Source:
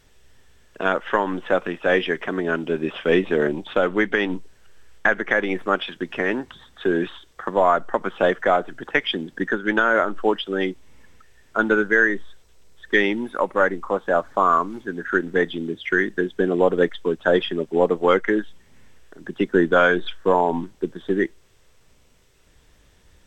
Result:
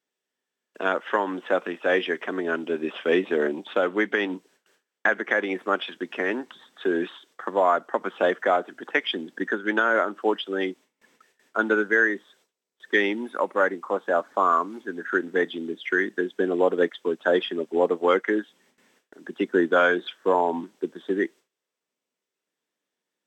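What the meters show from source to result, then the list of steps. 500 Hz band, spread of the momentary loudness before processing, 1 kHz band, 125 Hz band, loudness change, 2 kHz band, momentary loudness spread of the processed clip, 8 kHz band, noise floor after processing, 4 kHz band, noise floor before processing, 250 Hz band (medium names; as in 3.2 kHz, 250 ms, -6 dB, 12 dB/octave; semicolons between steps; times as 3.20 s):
-3.0 dB, 9 LU, -3.0 dB, under -10 dB, -3.0 dB, -3.0 dB, 9 LU, no reading, under -85 dBFS, -3.0 dB, -56 dBFS, -4.0 dB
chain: high-pass 220 Hz 24 dB/octave; gate with hold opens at -48 dBFS; trim -3 dB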